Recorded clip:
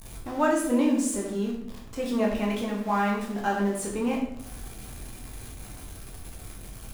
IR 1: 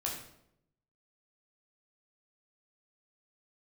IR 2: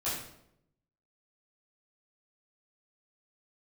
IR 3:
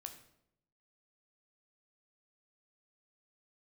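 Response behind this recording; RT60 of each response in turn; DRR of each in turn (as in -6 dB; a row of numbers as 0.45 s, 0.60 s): 1; 0.75 s, 0.75 s, 0.75 s; -2.5 dB, -11.5 dB, 5.0 dB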